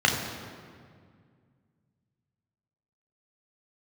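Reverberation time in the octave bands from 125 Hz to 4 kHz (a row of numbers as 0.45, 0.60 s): 3.0, 2.7, 2.1, 1.9, 1.7, 1.3 s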